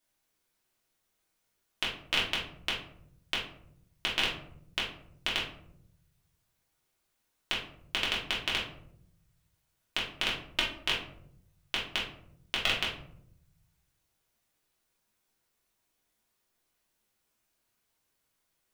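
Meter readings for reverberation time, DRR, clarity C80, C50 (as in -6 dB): 0.70 s, -6.5 dB, 9.5 dB, 5.0 dB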